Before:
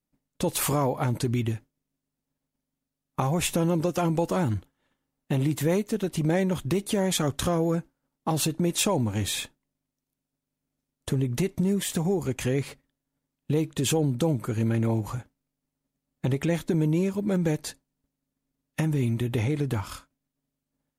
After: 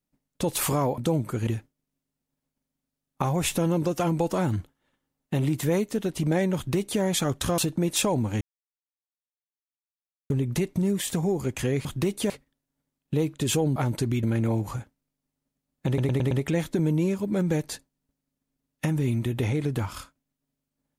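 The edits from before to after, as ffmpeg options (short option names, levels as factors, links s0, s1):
-filter_complex "[0:a]asplit=14[s0][s1][s2][s3][s4][s5][s6][s7][s8][s9][s10][s11][s12][s13];[s0]atrim=end=0.982[s14];[s1]atrim=start=14.128:end=14.622[s15];[s2]atrim=start=1.448:end=7.562[s16];[s3]atrim=start=8.398:end=9.23,asetpts=PTS-STARTPTS,afade=t=out:st=0.828:d=0.004:c=hsin[s17];[s4]atrim=start=9.23:end=11.12,asetpts=PTS-STARTPTS,volume=0[s18];[s5]atrim=start=11.12:end=12.672,asetpts=PTS-STARTPTS,afade=t=in:d=0.004:c=hsin[s19];[s6]atrim=start=6.538:end=6.992[s20];[s7]atrim=start=12.668:end=14.132[s21];[s8]atrim=start=0.978:end=1.452[s22];[s9]atrim=start=14.618:end=16.372[s23];[s10]atrim=start=16.258:end=16.372[s24];[s11]atrim=start=16.258:end=16.372[s25];[s12]atrim=start=16.258:end=16.372[s26];[s13]atrim=start=16.258[s27];[s14][s15]acrossfade=d=0.004:c1=hsin:c2=hsin[s28];[s28][s16]acrossfade=d=0.004:c1=hsin:c2=hsin[s29];[s17][s18][s19]concat=n=3:v=0:a=1[s30];[s29][s30]acrossfade=d=0.004:c1=hsin:c2=hsin[s31];[s31][s20]acrossfade=d=0.004:c1=hsin:c2=hsin[s32];[s32][s21]acrossfade=d=0.004:c1=hsin:c2=hsin[s33];[s33][s22]acrossfade=d=0.004:c1=hsin:c2=hsin[s34];[s34][s23]acrossfade=d=0.004:c1=hsin:c2=hsin[s35];[s35][s24]acrossfade=d=0.004:c1=hsin:c2=hsin[s36];[s36][s25]acrossfade=d=0.004:c1=hsin:c2=hsin[s37];[s37][s26]acrossfade=d=0.004:c1=hsin:c2=hsin[s38];[s38][s27]acrossfade=d=0.004:c1=hsin:c2=hsin"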